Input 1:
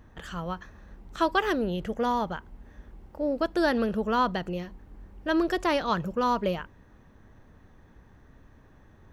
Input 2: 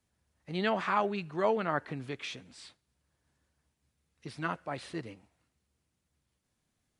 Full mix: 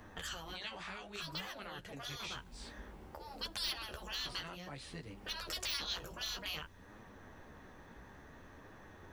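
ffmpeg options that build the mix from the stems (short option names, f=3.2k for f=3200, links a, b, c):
-filter_complex "[0:a]deesser=0.8,lowshelf=f=230:g=-11.5,acontrast=71,volume=2.5dB[a];[1:a]volume=1.5dB,asplit=2[b][c];[c]apad=whole_len=402295[d];[a][d]sidechaincompress=threshold=-38dB:ratio=4:attack=50:release=419[e];[e][b]amix=inputs=2:normalize=0,afftfilt=real='re*lt(hypot(re,im),0.158)':imag='im*lt(hypot(re,im),0.158)':win_size=1024:overlap=0.75,acrossover=split=120|3000[f][g][h];[g]acompressor=threshold=-44dB:ratio=4[i];[f][i][h]amix=inputs=3:normalize=0,flanger=delay=9:depth=8.8:regen=-21:speed=0.57:shape=triangular"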